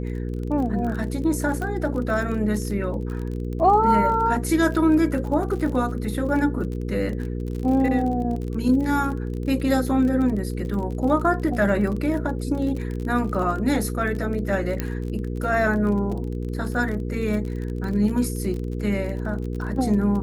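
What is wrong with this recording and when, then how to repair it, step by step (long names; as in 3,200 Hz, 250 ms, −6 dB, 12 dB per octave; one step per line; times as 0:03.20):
surface crackle 36 per second −30 dBFS
mains hum 60 Hz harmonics 8 −28 dBFS
0:01.62: click −18 dBFS
0:14.80: click −11 dBFS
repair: click removal
hum removal 60 Hz, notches 8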